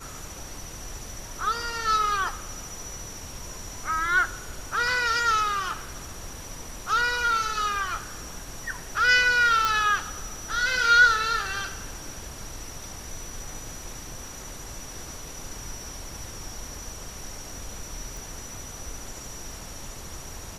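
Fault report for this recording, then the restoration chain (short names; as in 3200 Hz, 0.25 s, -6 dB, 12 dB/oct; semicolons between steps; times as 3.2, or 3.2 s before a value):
9.65 pop -9 dBFS
18.17 pop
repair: de-click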